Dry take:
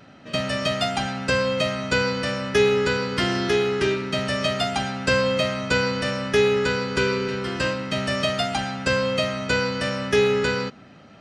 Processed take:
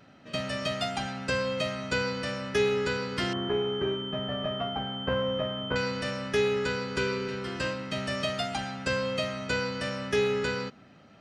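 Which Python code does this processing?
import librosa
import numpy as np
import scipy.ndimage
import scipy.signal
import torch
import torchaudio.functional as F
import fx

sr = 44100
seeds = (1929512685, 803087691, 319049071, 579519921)

y = fx.pwm(x, sr, carrier_hz=3100.0, at=(3.33, 5.76))
y = F.gain(torch.from_numpy(y), -7.0).numpy()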